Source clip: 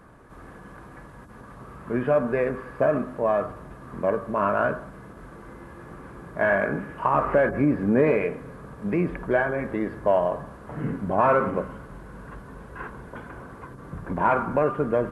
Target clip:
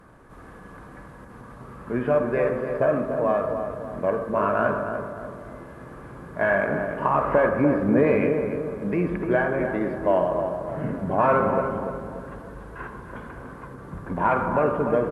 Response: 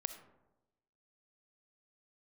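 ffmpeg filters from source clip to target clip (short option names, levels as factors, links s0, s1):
-filter_complex "[0:a]asplit=2[s0][s1];[s1]adelay=293,lowpass=f=1400:p=1,volume=0.501,asplit=2[s2][s3];[s3]adelay=293,lowpass=f=1400:p=1,volume=0.48,asplit=2[s4][s5];[s5]adelay=293,lowpass=f=1400:p=1,volume=0.48,asplit=2[s6][s7];[s7]adelay=293,lowpass=f=1400:p=1,volume=0.48,asplit=2[s8][s9];[s9]adelay=293,lowpass=f=1400:p=1,volume=0.48,asplit=2[s10][s11];[s11]adelay=293,lowpass=f=1400:p=1,volume=0.48[s12];[s0][s2][s4][s6][s8][s10][s12]amix=inputs=7:normalize=0[s13];[1:a]atrim=start_sample=2205,asetrate=36162,aresample=44100[s14];[s13][s14]afir=irnorm=-1:irlink=0"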